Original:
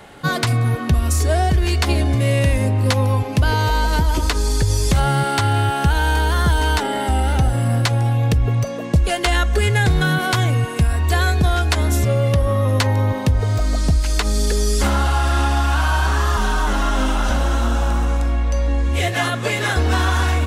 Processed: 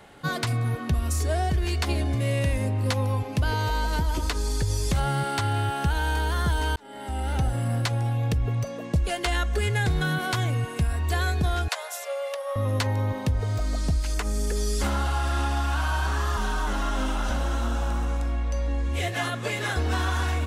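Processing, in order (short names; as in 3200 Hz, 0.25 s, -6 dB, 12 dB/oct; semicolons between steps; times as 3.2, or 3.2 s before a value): 6.76–7.38 fade in; 11.68–12.56 steep high-pass 480 Hz 96 dB/oct; 14.14–14.56 bell 4000 Hz -8.5 dB 0.71 oct; gain -8 dB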